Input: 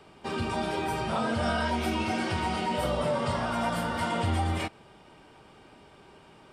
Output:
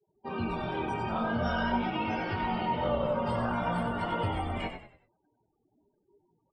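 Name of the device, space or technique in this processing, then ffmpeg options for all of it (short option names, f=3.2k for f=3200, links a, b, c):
double-tracked vocal: -filter_complex "[0:a]asettb=1/sr,asplit=3[a][b][c];[a]atrim=end=1.404[d];[b]atrim=start=1.4:end=3.07,asetpts=PTS-STARTPTS,afade=t=in:d=0.004:c=qsin,afade=t=out:st=1.666:d=0.004:c=qsin,lowpass=f=5.9k:w=0.5412,lowpass=f=5.9k:w=1.3066[e];[c]atrim=start=3.066[f];[d][e]acrossfade=d=0.004:c1=hsin:c2=qsin[g];[g][f]acrossfade=d=0.004:c1=qsin:c2=hsin,asplit=2[h][i];[i]adelay=17,volume=-8.5dB[j];[h][j]amix=inputs=2:normalize=0,flanger=delay=19:depth=7.6:speed=0.47,afftfilt=real='re*gte(hypot(re,im),0.00562)':imag='im*gte(hypot(re,im),0.00562)':win_size=1024:overlap=0.75,afftdn=nr=15:nf=-40,asplit=5[k][l][m][n][o];[l]adelay=95,afreqshift=-51,volume=-8dB[p];[m]adelay=190,afreqshift=-102,volume=-16.9dB[q];[n]adelay=285,afreqshift=-153,volume=-25.7dB[r];[o]adelay=380,afreqshift=-204,volume=-34.6dB[s];[k][p][q][r][s]amix=inputs=5:normalize=0"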